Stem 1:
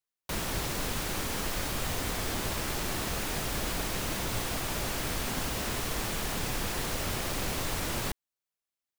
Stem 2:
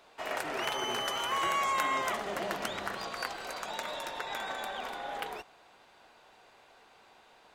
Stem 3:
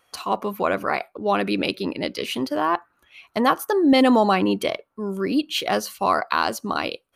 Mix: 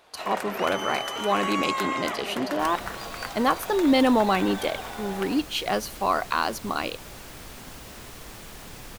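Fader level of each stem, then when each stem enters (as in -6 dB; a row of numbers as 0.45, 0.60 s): -9.5, +1.5, -3.5 dB; 2.30, 0.00, 0.00 s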